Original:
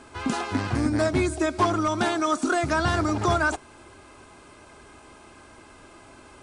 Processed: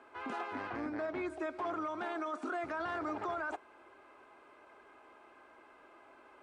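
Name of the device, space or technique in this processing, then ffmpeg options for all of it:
DJ mixer with the lows and highs turned down: -filter_complex "[0:a]acrossover=split=320 2700:gain=0.0891 1 0.1[link_01][link_02][link_03];[link_01][link_02][link_03]amix=inputs=3:normalize=0,alimiter=limit=-22.5dB:level=0:latency=1:release=14,asettb=1/sr,asplit=3[link_04][link_05][link_06];[link_04]atrim=end=0.684[link_07];[link_05]atrim=start=0.68:end=1.3,asetpts=PTS-STARTPTS,afade=type=in:duration=0.004:curve=qsin,afade=type=out:start_time=0.616:duration=0.004:curve=qsin,lowpass=5900[link_08];[link_06]atrim=start=1.296[link_09];[link_07][link_08]acrossfade=duration=0.004:curve1=hsin:curve2=qsin[link_10];[link_10][link_09]acrossfade=duration=0.004:curve1=qsin:curve2=hsin,volume=-7.5dB"

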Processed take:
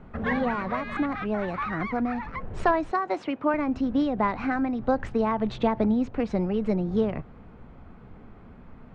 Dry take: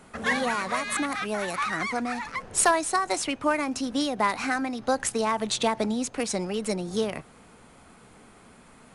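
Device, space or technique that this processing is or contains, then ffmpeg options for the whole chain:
phone in a pocket: -filter_complex "[0:a]aemphasis=mode=reproduction:type=bsi,asettb=1/sr,asplit=3[link_01][link_02][link_03];[link_01]atrim=end=2.914[link_04];[link_02]atrim=start=2.91:end=3.54,asetpts=PTS-STARTPTS,afade=type=in:duration=0.004:curve=qsin,afade=type=out:start_time=0.626:duration=0.004:curve=qsin,highpass=240[link_05];[link_03]atrim=start=3.536[link_06];[link_04][link_05]acrossfade=duration=0.004:curve1=hsin:curve2=qsin[link_07];[link_07][link_06]acrossfade=duration=0.004:curve1=qsin:curve2=hsin,lowpass=3900,highshelf=frequency=2400:gain=-8.5,highshelf=frequency=8500:gain=-4"

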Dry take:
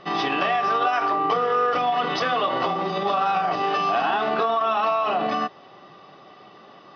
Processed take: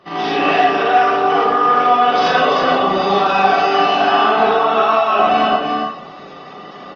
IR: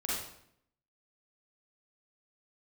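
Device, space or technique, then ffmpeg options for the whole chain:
far-field microphone of a smart speaker: -filter_complex "[0:a]asettb=1/sr,asplit=3[link_01][link_02][link_03];[link_01]atrim=end=2.984[link_04];[link_02]atrim=start=2.98:end=3.74,asetpts=PTS-STARTPTS,afade=type=in:duration=0.004:curve=qsin,afade=type=out:start_time=0.756:duration=0.004:curve=qsin,highshelf=frequency=4300:gain=5.5[link_05];[link_03]atrim=start=3.736[link_06];[link_04][link_05]acrossfade=duration=0.004:curve1=hsin:curve2=qsin[link_07];[link_07][link_06]acrossfade=duration=0.004:curve1=qsin:curve2=hsin,aecho=1:1:42|46|53|127|224|333:0.596|0.376|0.299|0.316|0.133|0.668[link_08];[1:a]atrim=start_sample=2205[link_09];[link_08][link_09]afir=irnorm=-1:irlink=0,highpass=frequency=98:width=0.5412,highpass=frequency=98:width=1.3066,dynaudnorm=framelen=260:gausssize=3:maxgain=4.5dB" -ar 48000 -c:a libopus -b:a 20k

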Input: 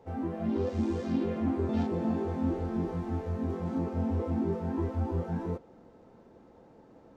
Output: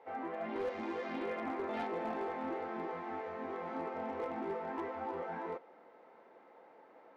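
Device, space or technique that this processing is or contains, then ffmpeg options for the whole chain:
megaphone: -af "highpass=660,lowpass=2600,equalizer=frequency=2100:width_type=o:width=0.27:gain=7,asoftclip=type=hard:threshold=-35dB,volume=3.5dB"

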